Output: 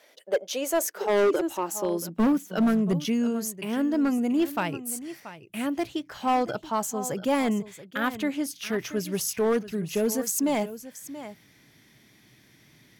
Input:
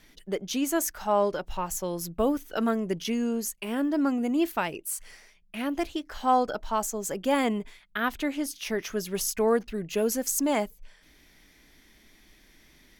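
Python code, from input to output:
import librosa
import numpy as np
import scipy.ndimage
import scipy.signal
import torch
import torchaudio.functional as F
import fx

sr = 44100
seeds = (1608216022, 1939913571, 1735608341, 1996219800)

y = x + 10.0 ** (-14.5 / 20.0) * np.pad(x, (int(681 * sr / 1000.0), 0))[:len(x)]
y = fx.filter_sweep_highpass(y, sr, from_hz=560.0, to_hz=120.0, start_s=0.53, end_s=3.35, q=5.7)
y = np.clip(10.0 ** (18.0 / 20.0) * y, -1.0, 1.0) / 10.0 ** (18.0 / 20.0)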